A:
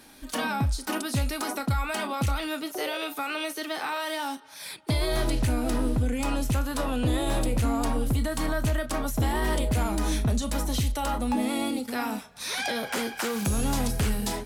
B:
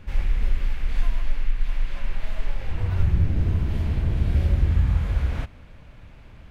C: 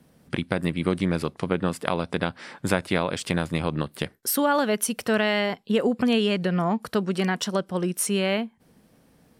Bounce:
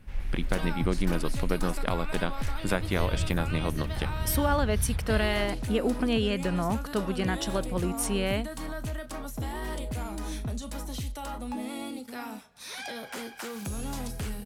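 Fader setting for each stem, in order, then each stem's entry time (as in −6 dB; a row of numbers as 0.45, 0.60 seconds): −8.5, −9.5, −5.0 decibels; 0.20, 0.00, 0.00 seconds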